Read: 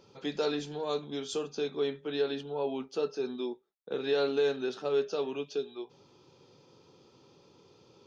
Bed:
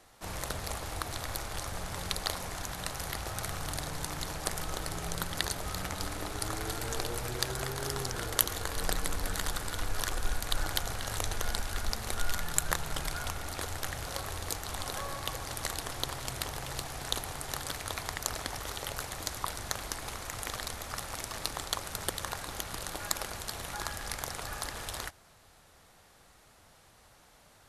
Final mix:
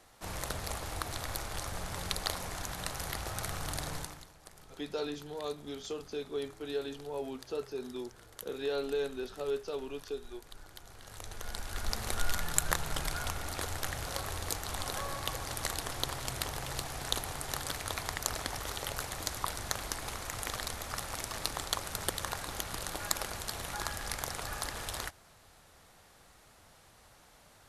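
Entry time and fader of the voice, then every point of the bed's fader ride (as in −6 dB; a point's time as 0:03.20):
4.55 s, −5.5 dB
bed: 0:03.97 −1 dB
0:04.31 −20 dB
0:10.73 −20 dB
0:11.98 0 dB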